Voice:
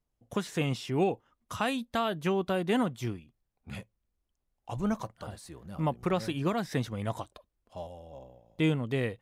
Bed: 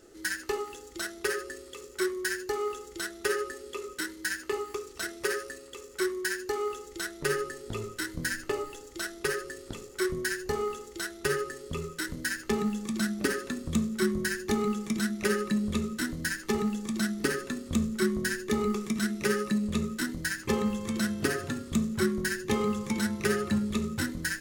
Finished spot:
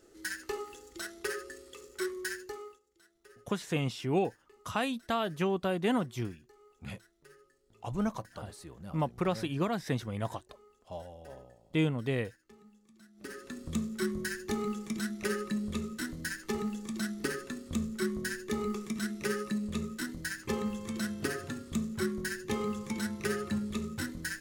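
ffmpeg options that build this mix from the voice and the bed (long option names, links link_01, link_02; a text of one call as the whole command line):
ffmpeg -i stem1.wav -i stem2.wav -filter_complex "[0:a]adelay=3150,volume=-1.5dB[link_01];[1:a]volume=18.5dB,afade=type=out:start_time=2.27:duration=0.53:silence=0.0630957,afade=type=in:start_time=13.13:duration=0.57:silence=0.0630957[link_02];[link_01][link_02]amix=inputs=2:normalize=0" out.wav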